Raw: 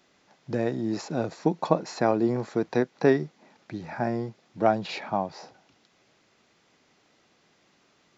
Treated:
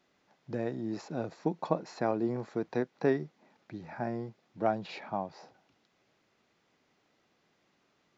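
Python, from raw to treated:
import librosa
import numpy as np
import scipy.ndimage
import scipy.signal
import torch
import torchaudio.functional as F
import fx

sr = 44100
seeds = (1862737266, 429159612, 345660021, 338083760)

y = fx.high_shelf(x, sr, hz=5000.0, db=-7.5)
y = y * 10.0 ** (-7.0 / 20.0)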